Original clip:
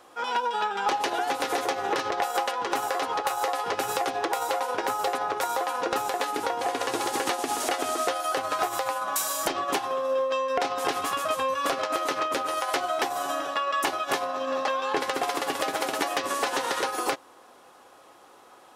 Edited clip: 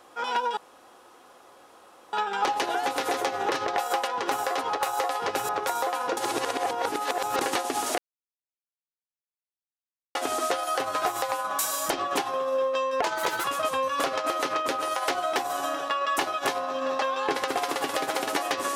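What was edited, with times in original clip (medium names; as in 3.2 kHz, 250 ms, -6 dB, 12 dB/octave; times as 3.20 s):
0.57 s: insert room tone 1.56 s
3.93–5.23 s: delete
5.91–7.15 s: reverse
7.72 s: insert silence 2.17 s
10.59–11.10 s: speed 121%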